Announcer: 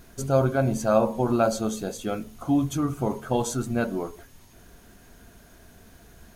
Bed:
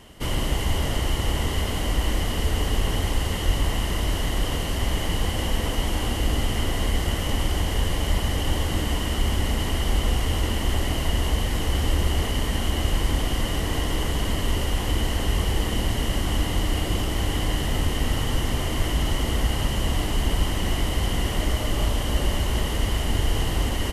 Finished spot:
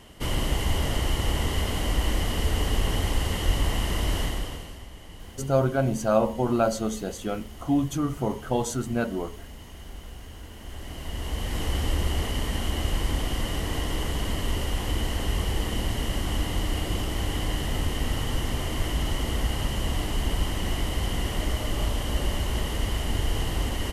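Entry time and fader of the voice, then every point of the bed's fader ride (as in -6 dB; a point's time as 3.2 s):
5.20 s, -1.0 dB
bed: 4.22 s -1.5 dB
4.89 s -19.5 dB
10.49 s -19.5 dB
11.61 s -3.5 dB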